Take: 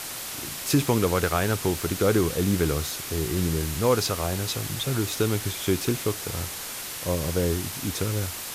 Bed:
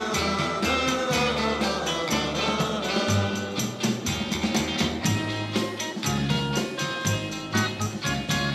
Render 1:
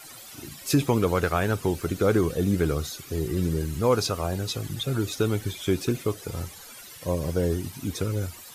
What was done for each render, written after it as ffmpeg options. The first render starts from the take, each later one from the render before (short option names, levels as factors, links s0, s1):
-af "afftdn=nr=15:nf=-35"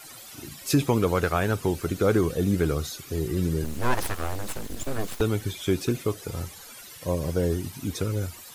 -filter_complex "[0:a]asettb=1/sr,asplit=3[s0][s1][s2];[s0]atrim=end=3.644[s3];[s1]atrim=start=3.64:end=5.21,asetpts=PTS-STARTPTS,afade=t=in:d=0.004:c=qsin,afade=t=out:st=1.566:d=0.004:c=qsin,aeval=exprs='abs(val(0))':c=same[s4];[s2]atrim=start=5.206[s5];[s3][s4]acrossfade=d=0.004:c1=hsin:c2=qsin[s6];[s6][s5]acrossfade=d=0.004:c1=qsin:c2=hsin"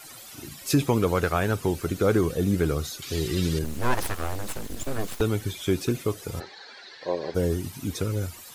-filter_complex "[0:a]asettb=1/sr,asplit=3[s0][s1][s2];[s0]atrim=end=3.024[s3];[s1]atrim=start=3.02:end=3.59,asetpts=PTS-STARTPTS,afade=t=in:d=0.004:c=qsin,afade=t=out:st=0.566:d=0.004:c=qsin,equalizer=f=3800:w=0.69:g=12.5[s4];[s2]atrim=start=3.586[s5];[s3][s4]acrossfade=d=0.004:c1=hsin:c2=qsin[s6];[s6][s5]acrossfade=d=0.004:c1=qsin:c2=hsin,asplit=3[s7][s8][s9];[s7]afade=t=out:st=6.39:d=0.02[s10];[s8]highpass=360,equalizer=f=390:t=q:w=4:g=7,equalizer=f=810:t=q:w=4:g=6,equalizer=f=1200:t=q:w=4:g=-4,equalizer=f=1700:t=q:w=4:g=10,equalizer=f=2900:t=q:w=4:g=-5,equalizer=f=4200:t=q:w=4:g=10,lowpass=f=4500:w=0.5412,lowpass=f=4500:w=1.3066,afade=t=in:st=6.39:d=0.02,afade=t=out:st=7.34:d=0.02[s11];[s9]afade=t=in:st=7.34:d=0.02[s12];[s10][s11][s12]amix=inputs=3:normalize=0"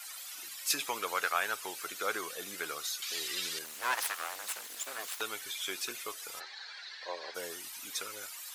-af "highpass=1200"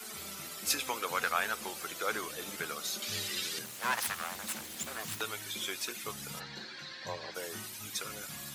-filter_complex "[1:a]volume=0.0631[s0];[0:a][s0]amix=inputs=2:normalize=0"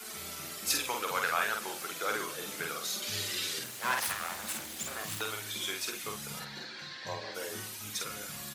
-filter_complex "[0:a]asplit=2[s0][s1];[s1]adelay=48,volume=0.631[s2];[s0][s2]amix=inputs=2:normalize=0,aecho=1:1:205:0.0891"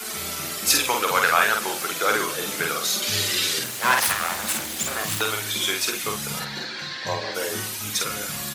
-af "volume=3.76,alimiter=limit=0.708:level=0:latency=1"